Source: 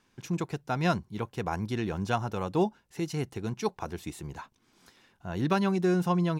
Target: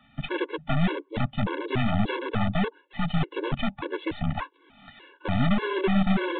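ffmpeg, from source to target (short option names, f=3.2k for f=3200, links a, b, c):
-filter_complex "[0:a]lowshelf=f=260:g=-3.5,acrossover=split=330[a][b];[b]acompressor=threshold=-40dB:ratio=16[c];[a][c]amix=inputs=2:normalize=0,afreqshift=15,aeval=exprs='0.0891*(cos(1*acos(clip(val(0)/0.0891,-1,1)))-cos(1*PI/2))+0.0141*(cos(2*acos(clip(val(0)/0.0891,-1,1)))-cos(2*PI/2))+0.00562*(cos(3*acos(clip(val(0)/0.0891,-1,1)))-cos(3*PI/2))+0.01*(cos(5*acos(clip(val(0)/0.0891,-1,1)))-cos(5*PI/2))+0.0224*(cos(8*acos(clip(val(0)/0.0891,-1,1)))-cos(8*PI/2))':c=same,asplit=2[d][e];[e]aeval=exprs='(mod(17.8*val(0)+1,2)-1)/17.8':c=same,volume=-6dB[f];[d][f]amix=inputs=2:normalize=0,aresample=8000,aresample=44100,afftfilt=real='re*gt(sin(2*PI*1.7*pts/sr)*(1-2*mod(floor(b*sr/1024/290),2)),0)':imag='im*gt(sin(2*PI*1.7*pts/sr)*(1-2*mod(floor(b*sr/1024/290),2)),0)':win_size=1024:overlap=0.75,volume=9dB"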